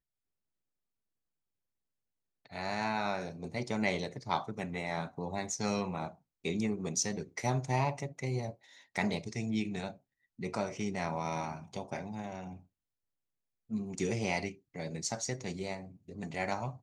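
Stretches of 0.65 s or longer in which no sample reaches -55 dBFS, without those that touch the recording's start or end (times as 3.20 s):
12.63–13.69 s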